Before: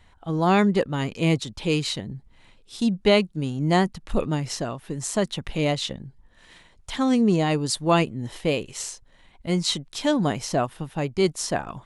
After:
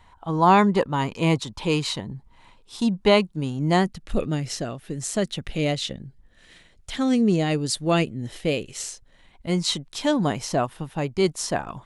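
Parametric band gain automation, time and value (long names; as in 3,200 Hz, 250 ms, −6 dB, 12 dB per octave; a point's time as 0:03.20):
parametric band 970 Hz 0.51 octaves
0:02.77 +11 dB
0:03.70 +3 dB
0:04.00 −9 dB
0:08.66 −9 dB
0:09.52 +1.5 dB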